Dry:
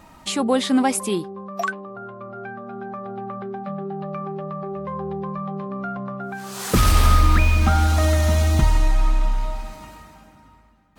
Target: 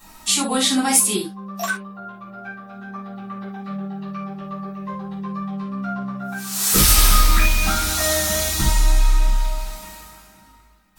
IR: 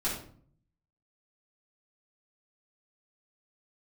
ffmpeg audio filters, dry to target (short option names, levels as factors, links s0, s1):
-filter_complex "[0:a]crystalizer=i=8:c=0,aeval=exprs='clip(val(0),-1,1)':c=same[s0];[1:a]atrim=start_sample=2205,atrim=end_sample=3969[s1];[s0][s1]afir=irnorm=-1:irlink=0,volume=0.299"